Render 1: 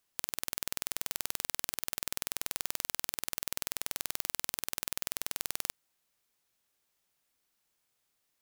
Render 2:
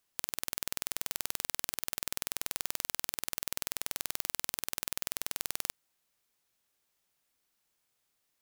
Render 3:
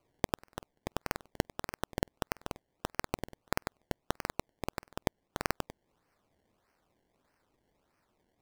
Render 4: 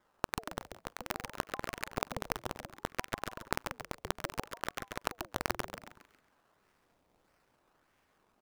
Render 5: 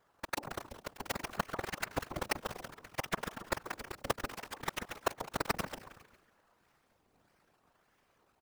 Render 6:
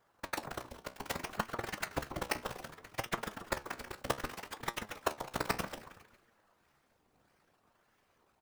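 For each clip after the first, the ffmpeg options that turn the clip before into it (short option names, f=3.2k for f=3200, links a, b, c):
-af anull
-filter_complex "[0:a]acrossover=split=5300[a][b];[b]alimiter=limit=-18.5dB:level=0:latency=1:release=195[c];[a][c]amix=inputs=2:normalize=0,acrusher=samples=24:mix=1:aa=0.000001:lfo=1:lforange=24:lforate=1.6,volume=3.5dB"
-filter_complex "[0:a]acompressor=threshold=-37dB:ratio=1.5,asplit=6[a][b][c][d][e][f];[b]adelay=136,afreqshift=100,volume=-5.5dB[g];[c]adelay=272,afreqshift=200,volume=-13.7dB[h];[d]adelay=408,afreqshift=300,volume=-21.9dB[i];[e]adelay=544,afreqshift=400,volume=-30dB[j];[f]adelay=680,afreqshift=500,volume=-38.2dB[k];[a][g][h][i][j][k]amix=inputs=6:normalize=0,aeval=exprs='val(0)*sin(2*PI*580*n/s+580*0.6/0.63*sin(2*PI*0.63*n/s))':c=same,volume=4.5dB"
-filter_complex "[0:a]asplit=4[a][b][c][d];[b]adelay=209,afreqshift=-130,volume=-19dB[e];[c]adelay=418,afreqshift=-260,volume=-29.2dB[f];[d]adelay=627,afreqshift=-390,volume=-39.3dB[g];[a][e][f][g]amix=inputs=4:normalize=0,aeval=exprs='val(0)*sin(2*PI*120*n/s)':c=same,afftfilt=real='hypot(re,im)*cos(2*PI*random(0))':imag='hypot(re,im)*sin(2*PI*random(1))':win_size=512:overlap=0.75,volume=9.5dB"
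-af "flanger=delay=8.5:depth=8:regen=67:speed=0.64:shape=sinusoidal,volume=4dB"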